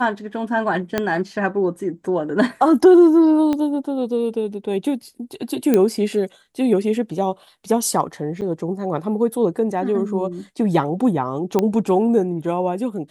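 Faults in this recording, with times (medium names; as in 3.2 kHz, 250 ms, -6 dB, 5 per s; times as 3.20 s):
0.98 s: pop -6 dBFS
3.53 s: pop -11 dBFS
5.74 s: pop -5 dBFS
8.41–8.42 s: dropout 7.8 ms
11.59 s: pop -6 dBFS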